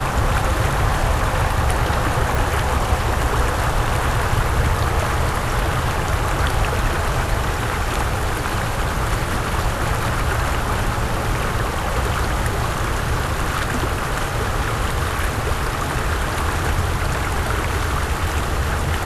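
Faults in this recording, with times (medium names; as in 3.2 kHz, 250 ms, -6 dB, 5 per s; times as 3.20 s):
2.35 s: pop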